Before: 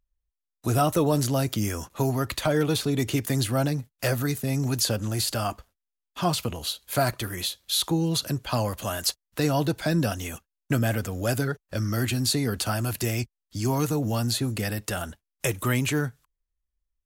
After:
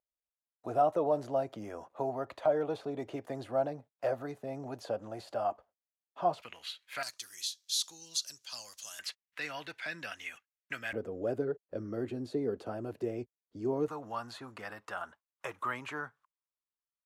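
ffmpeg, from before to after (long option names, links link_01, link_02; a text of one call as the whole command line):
ffmpeg -i in.wav -af "asetnsamples=nb_out_samples=441:pad=0,asendcmd='6.42 bandpass f 2100;7.03 bandpass f 5800;8.99 bandpass f 2100;10.93 bandpass f 430;13.88 bandpass f 1100',bandpass=frequency=660:width_type=q:width=2.5:csg=0" out.wav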